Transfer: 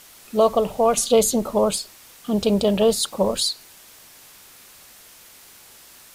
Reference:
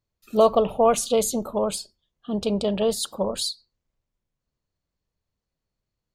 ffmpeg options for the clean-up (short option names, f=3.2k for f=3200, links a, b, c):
-af "afwtdn=0.005,asetnsamples=n=441:p=0,asendcmd='0.97 volume volume -5dB',volume=0dB"